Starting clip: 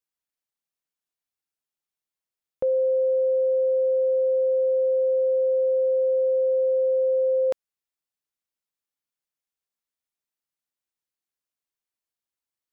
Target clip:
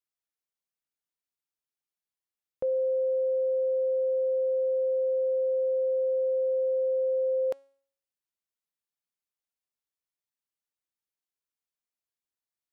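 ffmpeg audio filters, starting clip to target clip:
-af "bandreject=f=274.5:t=h:w=4,bandreject=f=549:t=h:w=4,bandreject=f=823.5:t=h:w=4,bandreject=f=1.098k:t=h:w=4,bandreject=f=1.3725k:t=h:w=4,bandreject=f=1.647k:t=h:w=4,bandreject=f=1.9215k:t=h:w=4,bandreject=f=2.196k:t=h:w=4,bandreject=f=2.4705k:t=h:w=4,bandreject=f=2.745k:t=h:w=4,bandreject=f=3.0195k:t=h:w=4,bandreject=f=3.294k:t=h:w=4,bandreject=f=3.5685k:t=h:w=4,bandreject=f=3.843k:t=h:w=4,bandreject=f=4.1175k:t=h:w=4,bandreject=f=4.392k:t=h:w=4,bandreject=f=4.6665k:t=h:w=4,bandreject=f=4.941k:t=h:w=4,bandreject=f=5.2155k:t=h:w=4,bandreject=f=5.49k:t=h:w=4,bandreject=f=5.7645k:t=h:w=4,bandreject=f=6.039k:t=h:w=4,bandreject=f=6.3135k:t=h:w=4,bandreject=f=6.588k:t=h:w=4,bandreject=f=6.8625k:t=h:w=4,bandreject=f=7.137k:t=h:w=4,bandreject=f=7.4115k:t=h:w=4,bandreject=f=7.686k:t=h:w=4,bandreject=f=7.9605k:t=h:w=4,bandreject=f=8.235k:t=h:w=4,bandreject=f=8.5095k:t=h:w=4,bandreject=f=8.784k:t=h:w=4,bandreject=f=9.0585k:t=h:w=4,bandreject=f=9.333k:t=h:w=4,bandreject=f=9.6075k:t=h:w=4,bandreject=f=9.882k:t=h:w=4,bandreject=f=10.1565k:t=h:w=4,bandreject=f=10.431k:t=h:w=4,bandreject=f=10.7055k:t=h:w=4,volume=-5dB"

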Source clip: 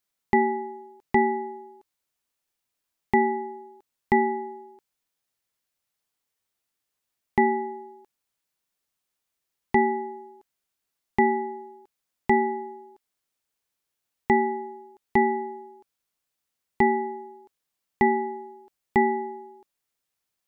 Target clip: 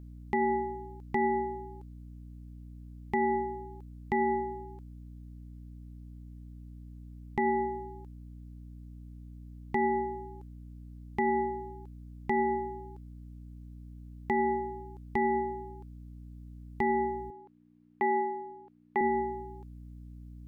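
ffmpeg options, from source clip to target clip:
-filter_complex "[0:a]aeval=exprs='val(0)+0.00562*(sin(2*PI*60*n/s)+sin(2*PI*2*60*n/s)/2+sin(2*PI*3*60*n/s)/3+sin(2*PI*4*60*n/s)/4+sin(2*PI*5*60*n/s)/5)':c=same,asettb=1/sr,asplit=3[a][b][c];[a]atrim=end=17.304[d];[b]atrim=start=17.3:end=19.01,asetpts=PTS-STARTPTS,afade=t=in:d=0.004:c=qsin,afade=t=out:st=1.706:d=0.004:c=qsin,highpass=350,lowpass=2.3k[e];[c]atrim=start=19.006[f];[d][e]acrossfade=d=0.004:c1=hsin:c2=qsin[g];[g][f]acrossfade=d=0.004:c1=qsin:c2=hsin,alimiter=limit=-19dB:level=0:latency=1:release=92"

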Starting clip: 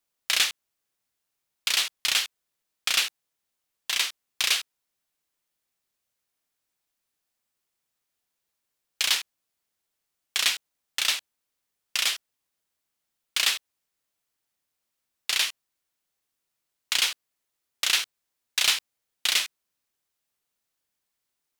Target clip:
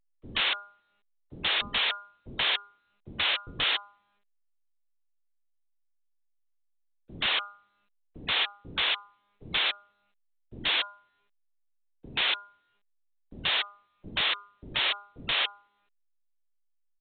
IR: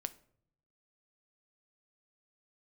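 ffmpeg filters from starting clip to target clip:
-filter_complex "[0:a]afftfilt=real='re*gte(hypot(re,im),0.01)':imag='im*gte(hypot(re,im),0.01)':win_size=1024:overlap=0.75,lowshelf=f=110:g=-8.5,bandreject=f=159.9:t=h:w=4,bandreject=f=319.8:t=h:w=4,bandreject=f=479.7:t=h:w=4,bandreject=f=639.6:t=h:w=4,bandreject=f=799.5:t=h:w=4,bandreject=f=959.4:t=h:w=4,bandreject=f=1.1193k:t=h:w=4,acontrast=64,asplit=2[a][b];[b]highpass=f=720:p=1,volume=30dB,asoftclip=type=tanh:threshold=-3.5dB[c];[a][c]amix=inputs=2:normalize=0,lowpass=f=2.9k:p=1,volume=-6dB,asetrate=56007,aresample=44100,volume=17dB,asoftclip=hard,volume=-17dB,acrossover=split=360[d][e];[e]adelay=130[f];[d][f]amix=inputs=2:normalize=0,volume=-3.5dB" -ar 8000 -c:a pcm_alaw

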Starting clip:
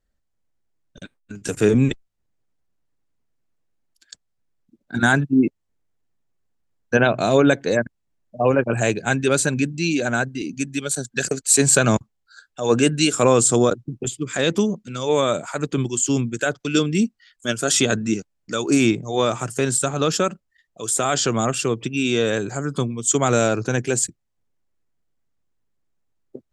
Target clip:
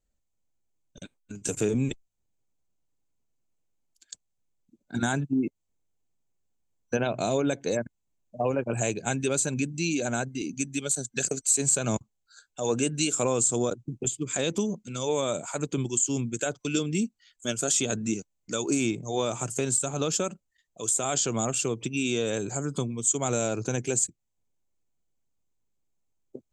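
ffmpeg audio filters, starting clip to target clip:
-af "superequalizer=10b=0.631:11b=0.501:15b=2.24,acompressor=threshold=-20dB:ratio=2.5,volume=-4.5dB"

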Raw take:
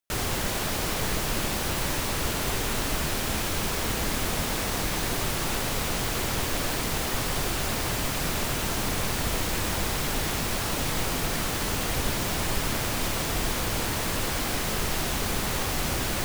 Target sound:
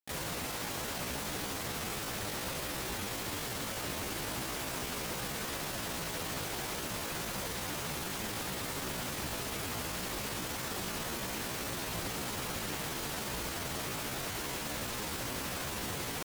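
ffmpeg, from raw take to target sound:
-af "highpass=f=84:p=1,asetrate=58866,aresample=44100,atempo=0.749154,volume=-8dB"

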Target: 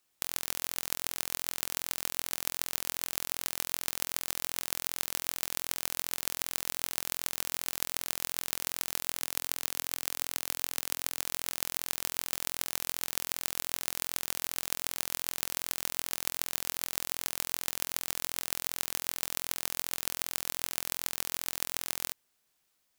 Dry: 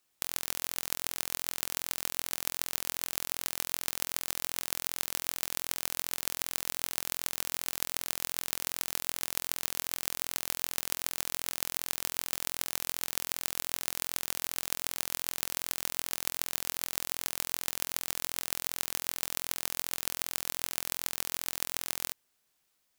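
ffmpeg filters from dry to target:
-filter_complex "[0:a]asettb=1/sr,asplit=3[a][b][c];[a]atrim=end=9.204[d];[b]atrim=start=9.2:end=11.24,asetpts=PTS-STARTPTS,afade=t=in:d=0.004:c=qsin,afade=t=out:st=2.036:d=0.004:c=qsin,lowshelf=f=120:g=-8.5[e];[c]atrim=start=11.236[f];[d][e]acrossfade=d=0.004:c1=hsin:c2=qsin[g];[g][f]acrossfade=d=0.004:c1=qsin:c2=hsin"

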